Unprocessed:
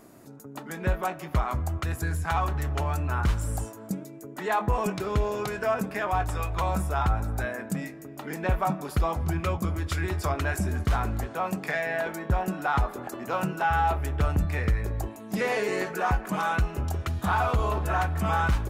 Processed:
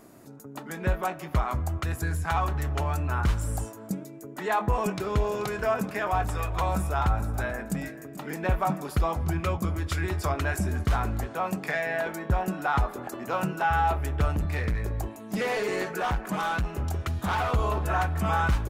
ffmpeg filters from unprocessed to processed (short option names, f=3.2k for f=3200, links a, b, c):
-filter_complex "[0:a]asplit=3[a][b][c];[a]afade=t=out:st=5.17:d=0.02[d];[b]aecho=1:1:434:0.178,afade=t=in:st=5.17:d=0.02,afade=t=out:st=8.86:d=0.02[e];[c]afade=t=in:st=8.86:d=0.02[f];[d][e][f]amix=inputs=3:normalize=0,asettb=1/sr,asplit=3[g][h][i];[g]atrim=end=14.334[j];[h]atrim=start=14.33:end=17.51,asetpts=PTS-STARTPTS,afade=t=in:d=0.004:c=qsin,afade=t=out:st=3.176:d=0.004:c=qsin,asoftclip=type=hard:threshold=-23.5dB[k];[i]atrim=start=17.506[l];[j][k]acrossfade=d=0.004:c1=hsin:c2=qsin[m];[m][l]acrossfade=d=0.004:c1=qsin:c2=hsin"